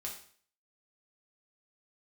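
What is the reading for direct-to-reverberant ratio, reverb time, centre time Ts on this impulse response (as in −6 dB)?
−3.0 dB, 0.50 s, 27 ms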